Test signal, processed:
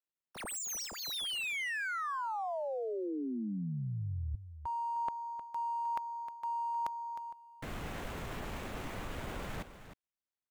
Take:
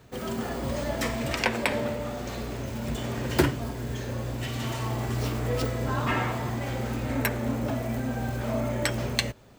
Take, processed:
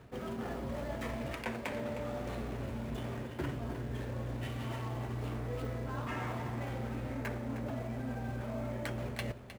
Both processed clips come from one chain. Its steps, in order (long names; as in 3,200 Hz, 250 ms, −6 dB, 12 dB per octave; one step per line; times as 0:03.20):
running median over 9 samples
reversed playback
downward compressor 6 to 1, threshold −36 dBFS
reversed playback
single-tap delay 310 ms −11.5 dB